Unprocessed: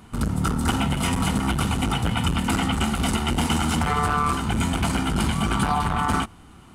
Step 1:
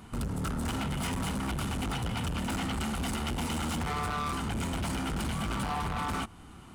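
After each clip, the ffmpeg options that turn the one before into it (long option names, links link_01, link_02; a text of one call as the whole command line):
ffmpeg -i in.wav -filter_complex "[0:a]asplit=2[link_01][link_02];[link_02]acompressor=threshold=-29dB:ratio=6,volume=2dB[link_03];[link_01][link_03]amix=inputs=2:normalize=0,asoftclip=type=hard:threshold=-20.5dB,volume=-9dB" out.wav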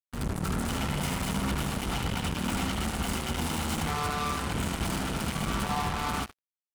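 ffmpeg -i in.wav -af "aecho=1:1:75|150|225|300|375:0.447|0.205|0.0945|0.0435|0.02,acrusher=bits=4:mix=0:aa=0.5" out.wav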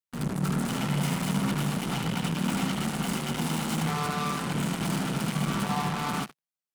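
ffmpeg -i in.wav -af "lowshelf=frequency=110:width_type=q:width=3:gain=-10.5" out.wav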